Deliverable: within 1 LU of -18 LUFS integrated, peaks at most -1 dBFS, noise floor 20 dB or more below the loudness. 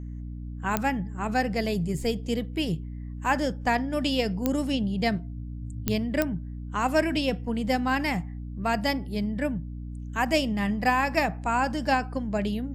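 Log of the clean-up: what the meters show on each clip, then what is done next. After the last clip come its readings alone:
clicks found 4; hum 60 Hz; highest harmonic 300 Hz; hum level -34 dBFS; loudness -27.5 LUFS; peak level -9.5 dBFS; loudness target -18.0 LUFS
-> de-click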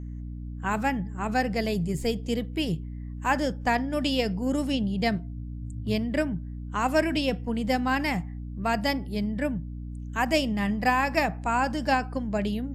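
clicks found 0; hum 60 Hz; highest harmonic 300 Hz; hum level -34 dBFS
-> de-hum 60 Hz, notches 5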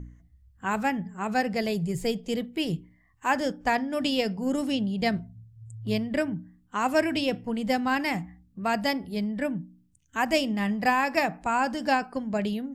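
hum not found; loudness -28.0 LUFS; peak level -11.5 dBFS; loudness target -18.0 LUFS
-> trim +10 dB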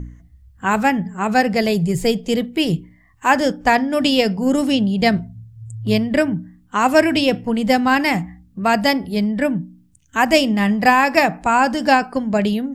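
loudness -18.0 LUFS; peak level -1.5 dBFS; noise floor -53 dBFS

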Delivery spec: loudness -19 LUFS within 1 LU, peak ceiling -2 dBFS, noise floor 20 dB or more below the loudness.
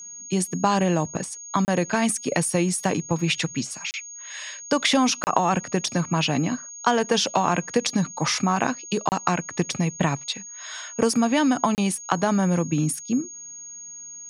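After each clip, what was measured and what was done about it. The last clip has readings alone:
dropouts 5; longest dropout 29 ms; steady tone 6.6 kHz; tone level -37 dBFS; loudness -24.0 LUFS; peak level -3.0 dBFS; loudness target -19.0 LUFS
-> interpolate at 1.65/3.91/5.24/9.09/11.75 s, 29 ms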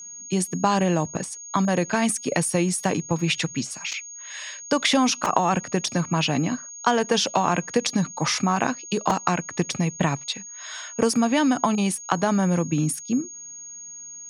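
dropouts 0; steady tone 6.6 kHz; tone level -37 dBFS
-> band-stop 6.6 kHz, Q 30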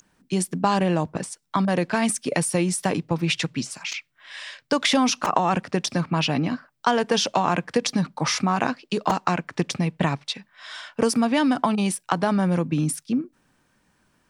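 steady tone not found; loudness -24.0 LUFS; peak level -3.0 dBFS; loudness target -19.0 LUFS
-> trim +5 dB; peak limiter -2 dBFS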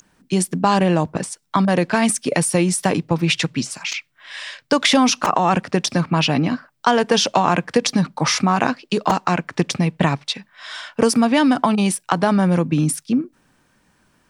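loudness -19.0 LUFS; peak level -2.0 dBFS; noise floor -62 dBFS

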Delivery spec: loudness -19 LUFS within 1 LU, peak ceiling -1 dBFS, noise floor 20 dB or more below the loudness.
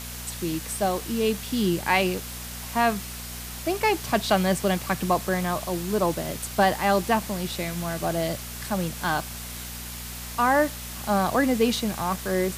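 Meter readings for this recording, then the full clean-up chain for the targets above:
hum 60 Hz; highest harmonic 240 Hz; hum level -37 dBFS; noise floor -37 dBFS; noise floor target -46 dBFS; loudness -26.0 LUFS; peak level -7.0 dBFS; loudness target -19.0 LUFS
-> de-hum 60 Hz, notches 4; noise reduction 9 dB, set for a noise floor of -37 dBFS; trim +7 dB; peak limiter -1 dBFS

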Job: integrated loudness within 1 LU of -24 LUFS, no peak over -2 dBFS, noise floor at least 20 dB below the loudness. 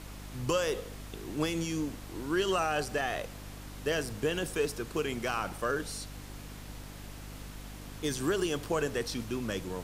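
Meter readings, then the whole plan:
hum 50 Hz; highest harmonic 300 Hz; hum level -43 dBFS; noise floor -45 dBFS; noise floor target -53 dBFS; loudness -33.0 LUFS; peak level -17.0 dBFS; loudness target -24.0 LUFS
-> de-hum 50 Hz, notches 6; noise reduction 8 dB, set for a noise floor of -45 dBFS; trim +9 dB

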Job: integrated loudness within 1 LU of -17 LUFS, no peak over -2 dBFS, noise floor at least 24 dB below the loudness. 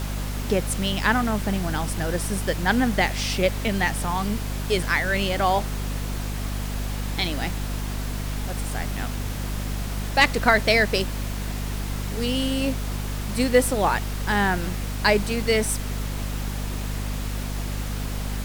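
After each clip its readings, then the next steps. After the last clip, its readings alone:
hum 50 Hz; highest harmonic 250 Hz; hum level -26 dBFS; noise floor -29 dBFS; noise floor target -49 dBFS; loudness -25.0 LUFS; peak level -4.5 dBFS; loudness target -17.0 LUFS
-> de-hum 50 Hz, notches 5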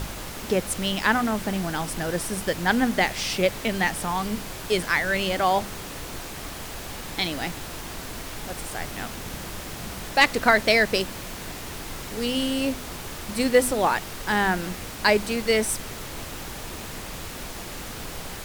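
hum not found; noise floor -37 dBFS; noise floor target -50 dBFS
-> noise print and reduce 13 dB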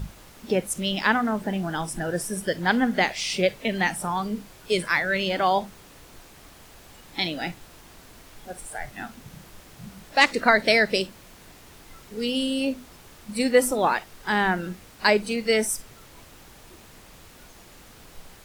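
noise floor -49 dBFS; loudness -24.0 LUFS; peak level -5.0 dBFS; loudness target -17.0 LUFS
-> trim +7 dB; peak limiter -2 dBFS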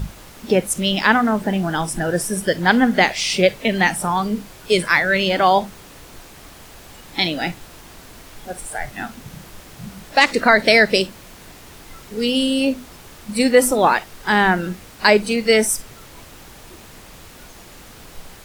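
loudness -17.5 LUFS; peak level -2.0 dBFS; noise floor -42 dBFS

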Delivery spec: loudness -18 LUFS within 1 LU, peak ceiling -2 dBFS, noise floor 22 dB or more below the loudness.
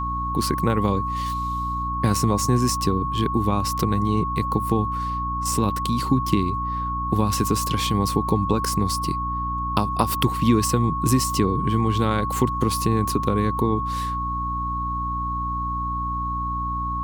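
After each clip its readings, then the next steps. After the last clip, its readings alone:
hum 60 Hz; highest harmonic 300 Hz; hum level -27 dBFS; steady tone 1.1 kHz; tone level -25 dBFS; loudness -23.0 LUFS; peak level -3.0 dBFS; loudness target -18.0 LUFS
-> de-hum 60 Hz, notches 5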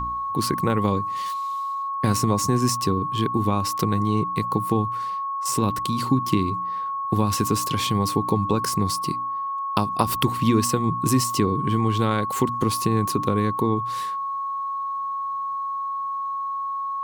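hum not found; steady tone 1.1 kHz; tone level -25 dBFS
-> band-stop 1.1 kHz, Q 30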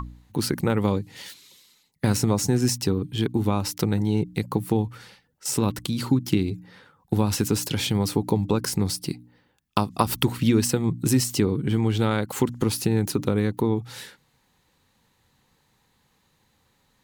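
steady tone not found; loudness -24.5 LUFS; peak level -4.0 dBFS; loudness target -18.0 LUFS
-> trim +6.5 dB; peak limiter -2 dBFS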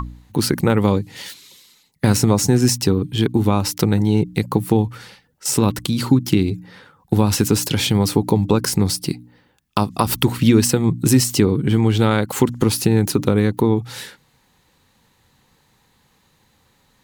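loudness -18.0 LUFS; peak level -2.0 dBFS; noise floor -61 dBFS

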